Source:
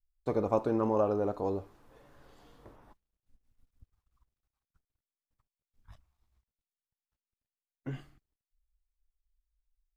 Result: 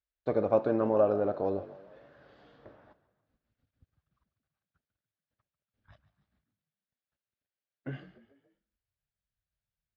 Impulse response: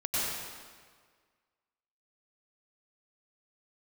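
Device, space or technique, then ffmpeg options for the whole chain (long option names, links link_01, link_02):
frequency-shifting delay pedal into a guitar cabinet: -filter_complex "[0:a]asplit=5[link_01][link_02][link_03][link_04][link_05];[link_02]adelay=143,afreqshift=47,volume=-17dB[link_06];[link_03]adelay=286,afreqshift=94,volume=-23.4dB[link_07];[link_04]adelay=429,afreqshift=141,volume=-29.8dB[link_08];[link_05]adelay=572,afreqshift=188,volume=-36.1dB[link_09];[link_01][link_06][link_07][link_08][link_09]amix=inputs=5:normalize=0,highpass=94,equalizer=frequency=600:width_type=q:width=4:gain=7,equalizer=frequency=980:width_type=q:width=4:gain=-5,equalizer=frequency=1600:width_type=q:width=4:gain=6,lowpass=frequency=4400:width=0.5412,lowpass=frequency=4400:width=1.3066"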